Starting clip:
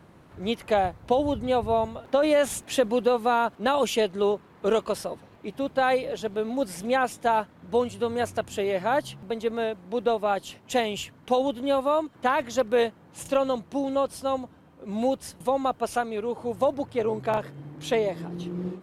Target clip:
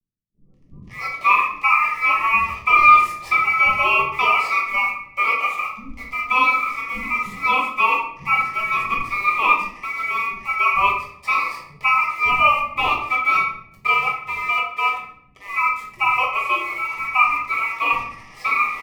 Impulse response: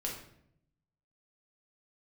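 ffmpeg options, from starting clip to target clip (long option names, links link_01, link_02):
-filter_complex "[0:a]equalizer=frequency=610:width_type=o:width=1.2:gain=11.5,asettb=1/sr,asplit=3[link_01][link_02][link_03];[link_01]atrim=end=12.154[link_04];[link_02]atrim=start=12.15:end=14.95,asetpts=PTS-STARTPTS,afade=type=in:duration=0.004:curve=qsin,afade=type=out:start_time=2.796:duration=0.004:curve=qsin,aeval=exprs='sgn(val(0))*max(abs(val(0))-0.0224,0)':channel_layout=same[link_05];[link_03]atrim=start=14.946[link_06];[link_04][link_05]acrossfade=duration=0.004:curve1=hsin:curve2=qsin[link_07];[link_07][link_06]acrossfade=duration=0.004:curve1=qsin:curve2=hsin,aeval=exprs='val(0)*sin(2*PI*1800*n/s)':channel_layout=same,acrusher=bits=5:mix=0:aa=0.5,asuperstop=centerf=1500:order=20:qfactor=4.2,highshelf=frequency=3100:gain=-10,acrossover=split=250[link_08][link_09];[link_09]adelay=530[link_10];[link_08][link_10]amix=inputs=2:normalize=0[link_11];[1:a]atrim=start_sample=2205[link_12];[link_11][link_12]afir=irnorm=-1:irlink=0,volume=2dB"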